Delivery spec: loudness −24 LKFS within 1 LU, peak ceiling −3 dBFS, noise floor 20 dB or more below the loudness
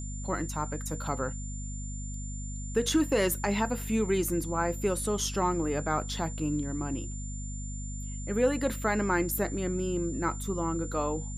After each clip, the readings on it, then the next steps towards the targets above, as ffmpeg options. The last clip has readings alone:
mains hum 50 Hz; hum harmonics up to 250 Hz; level of the hum −35 dBFS; interfering tone 7,200 Hz; level of the tone −43 dBFS; integrated loudness −31.0 LKFS; sample peak −14.5 dBFS; target loudness −24.0 LKFS
→ -af "bandreject=frequency=50:width_type=h:width=6,bandreject=frequency=100:width_type=h:width=6,bandreject=frequency=150:width_type=h:width=6,bandreject=frequency=200:width_type=h:width=6,bandreject=frequency=250:width_type=h:width=6"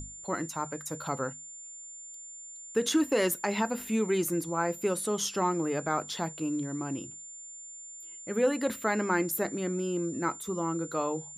mains hum none found; interfering tone 7,200 Hz; level of the tone −43 dBFS
→ -af "bandreject=frequency=7200:width=30"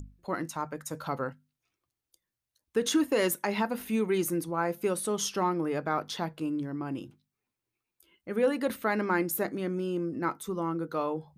interfering tone none found; integrated loudness −31.0 LKFS; sample peak −15.5 dBFS; target loudness −24.0 LKFS
→ -af "volume=7dB"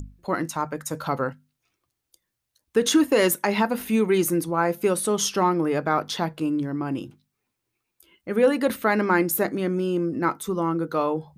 integrated loudness −24.0 LKFS; sample peak −8.5 dBFS; background noise floor −81 dBFS

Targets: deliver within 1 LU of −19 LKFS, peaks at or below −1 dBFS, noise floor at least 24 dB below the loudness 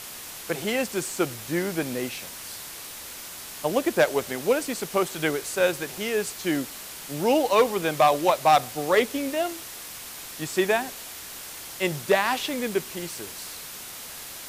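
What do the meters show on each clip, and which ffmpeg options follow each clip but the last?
background noise floor −40 dBFS; target noise floor −50 dBFS; integrated loudness −25.5 LKFS; sample peak −8.5 dBFS; target loudness −19.0 LKFS
→ -af "afftdn=noise_reduction=10:noise_floor=-40"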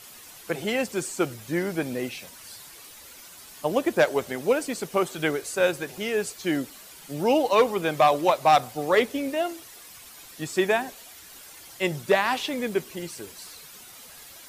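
background noise floor −47 dBFS; target noise floor −50 dBFS
→ -af "afftdn=noise_reduction=6:noise_floor=-47"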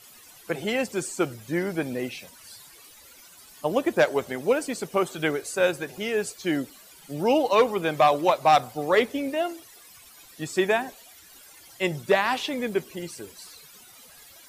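background noise floor −51 dBFS; integrated loudness −25.0 LKFS; sample peak −9.0 dBFS; target loudness −19.0 LKFS
→ -af "volume=6dB"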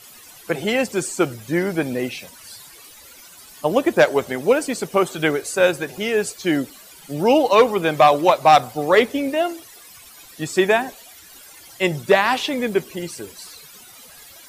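integrated loudness −19.0 LKFS; sample peak −3.0 dBFS; background noise floor −45 dBFS

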